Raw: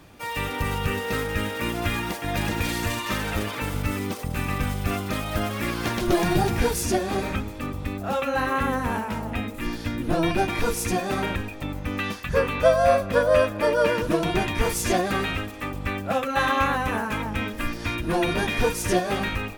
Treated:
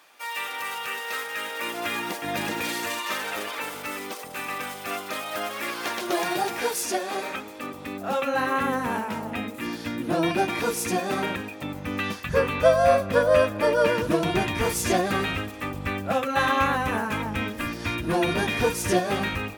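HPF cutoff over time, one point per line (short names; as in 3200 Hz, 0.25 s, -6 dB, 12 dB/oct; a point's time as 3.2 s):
1.31 s 840 Hz
2.29 s 200 Hz
3.05 s 470 Hz
7.26 s 470 Hz
8.26 s 170 Hz
11.54 s 170 Hz
12.27 s 72 Hz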